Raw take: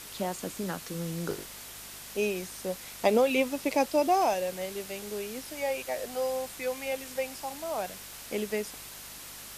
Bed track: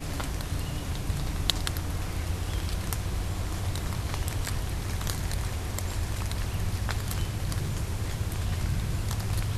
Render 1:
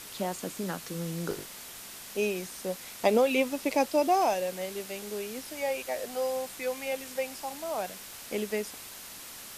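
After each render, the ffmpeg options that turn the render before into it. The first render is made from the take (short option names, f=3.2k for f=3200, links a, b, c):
-af "bandreject=f=50:t=h:w=4,bandreject=f=100:t=h:w=4,bandreject=f=150:t=h:w=4"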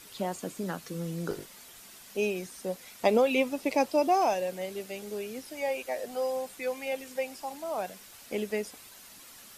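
-af "afftdn=nr=8:nf=-45"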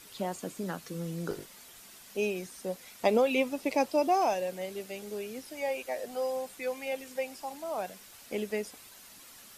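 -af "volume=-1.5dB"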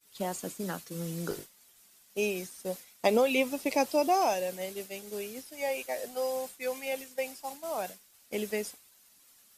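-af "highshelf=f=4.5k:g=8,agate=range=-33dB:threshold=-36dB:ratio=3:detection=peak"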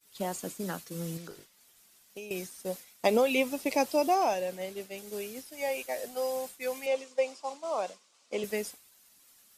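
-filter_complex "[0:a]asettb=1/sr,asplit=3[a][b][c];[a]atrim=end=1.174[d];[b]atrim=start=1.17:end=2.31,asetpts=PTS-STARTPTS,afade=t=in:d=0.004:c=qsin,afade=t=out:st=1.136:d=0.004:c=qsin,acrossover=split=1100|5800[e][f][g];[e]acompressor=threshold=-45dB:ratio=4[h];[f]acompressor=threshold=-52dB:ratio=4[i];[g]acompressor=threshold=-59dB:ratio=4[j];[h][i][j]amix=inputs=3:normalize=0[k];[c]atrim=start=2.306[l];[d][k]acrossfade=d=0.004:c1=hsin:c2=qsin[m];[m][l]acrossfade=d=0.004:c1=qsin:c2=hsin,asettb=1/sr,asplit=3[n][o][p];[n]atrim=end=4.144[q];[o]atrim=start=4.14:end=4.98,asetpts=PTS-STARTPTS,afade=t=in:d=0.004:c=qsin,afade=t=out:st=0.836:d=0.004:c=qsin,highshelf=f=5.3k:g=-7[r];[p]atrim=start=4.976[s];[q][r]acrossfade=d=0.004:c1=hsin:c2=qsin[t];[t][s]acrossfade=d=0.004:c1=qsin:c2=hsin,asettb=1/sr,asplit=3[u][v][w];[u]atrim=end=6.864[x];[v]atrim=start=6.86:end=8.44,asetpts=PTS-STARTPTS,afade=t=in:d=0.004:c=qsin,afade=t=out:st=1.576:d=0.004:c=qsin,highpass=240,equalizer=f=530:t=q:w=4:g=6,equalizer=f=1.1k:t=q:w=4:g=8,equalizer=f=1.7k:t=q:w=4:g=-6,lowpass=f=7.5k:w=0.5412,lowpass=f=7.5k:w=1.3066[y];[w]atrim=start=8.436[z];[x][y]acrossfade=d=0.004:c1=hsin:c2=qsin[aa];[aa][z]acrossfade=d=0.004:c1=qsin:c2=hsin"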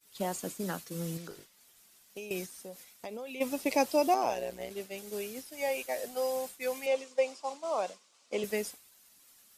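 -filter_complex "[0:a]asplit=3[a][b][c];[a]afade=t=out:st=2.45:d=0.02[d];[b]acompressor=threshold=-44dB:ratio=3:attack=3.2:release=140:knee=1:detection=peak,afade=t=in:st=2.45:d=0.02,afade=t=out:st=3.4:d=0.02[e];[c]afade=t=in:st=3.4:d=0.02[f];[d][e][f]amix=inputs=3:normalize=0,asettb=1/sr,asplit=3[g][h][i];[g]atrim=end=4.144[j];[h]atrim=start=4.14:end=4.71,asetpts=PTS-STARTPTS,afade=t=in:d=0.004:c=qsin,afade=t=out:st=0.566:d=0.004:c=qsin,tremolo=f=120:d=0.824[k];[i]atrim=start=4.706[l];[j][k]acrossfade=d=0.004:c1=hsin:c2=qsin[m];[m][l]acrossfade=d=0.004:c1=qsin:c2=hsin"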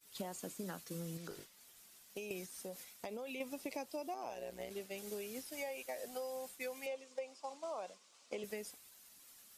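-af "acompressor=threshold=-41dB:ratio=6"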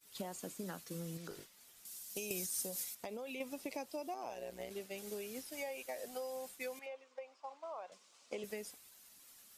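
-filter_complex "[0:a]asettb=1/sr,asplit=3[a][b][c];[a]atrim=end=1.854[d];[b]atrim=start=1.85:end=2.95,asetpts=PTS-STARTPTS,afade=t=in:d=0.004:c=qsin,afade=t=out:st=1.096:d=0.004:c=qsin,bass=f=250:g=4,treble=f=4k:g=13[e];[c]atrim=start=2.946[f];[d][e]acrossfade=d=0.004:c1=hsin:c2=qsin[g];[g][f]acrossfade=d=0.004:c1=qsin:c2=hsin,asettb=1/sr,asplit=3[h][i][j];[h]atrim=end=6.794[k];[i]atrim=start=6.79:end=7.92,asetpts=PTS-STARTPTS,afade=t=in:d=0.004:c=qsin,afade=t=out:st=1.126:d=0.004:c=qsin,bandpass=f=1.2k:t=q:w=0.84[l];[j]atrim=start=7.916[m];[k][l]acrossfade=d=0.004:c1=hsin:c2=qsin[n];[n][m]acrossfade=d=0.004:c1=qsin:c2=hsin"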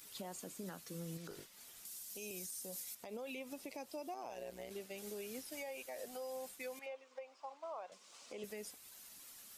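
-af "alimiter=level_in=12.5dB:limit=-24dB:level=0:latency=1:release=108,volume=-12.5dB,acompressor=mode=upward:threshold=-49dB:ratio=2.5"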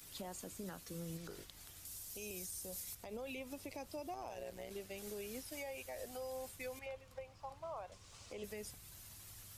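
-filter_complex "[1:a]volume=-32.5dB[a];[0:a][a]amix=inputs=2:normalize=0"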